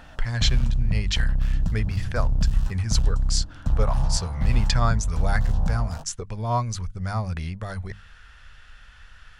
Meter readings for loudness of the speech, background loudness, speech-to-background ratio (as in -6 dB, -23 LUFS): -29.0 LUFS, -27.0 LUFS, -2.0 dB